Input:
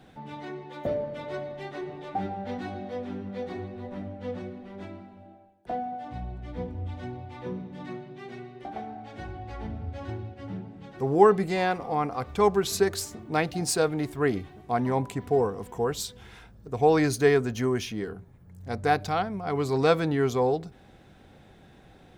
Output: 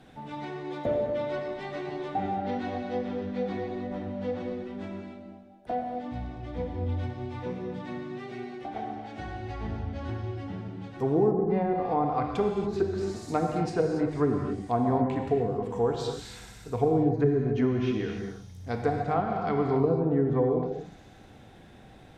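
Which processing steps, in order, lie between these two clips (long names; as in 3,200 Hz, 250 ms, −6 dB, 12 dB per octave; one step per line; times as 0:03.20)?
delay with a high-pass on its return 61 ms, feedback 84%, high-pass 4,700 Hz, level −15 dB
treble cut that deepens with the level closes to 330 Hz, closed at −19 dBFS
reverb whose tail is shaped and stops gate 310 ms flat, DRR 1.5 dB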